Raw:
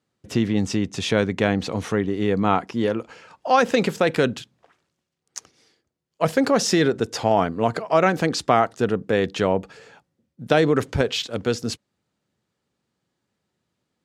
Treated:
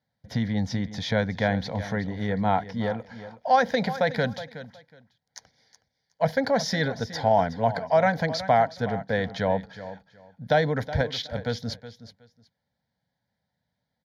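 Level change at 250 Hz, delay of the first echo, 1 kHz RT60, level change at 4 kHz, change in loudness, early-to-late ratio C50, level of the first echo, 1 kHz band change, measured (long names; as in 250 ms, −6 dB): −6.5 dB, 369 ms, no reverb audible, −5.0 dB, −4.0 dB, no reverb audible, −14.0 dB, −1.5 dB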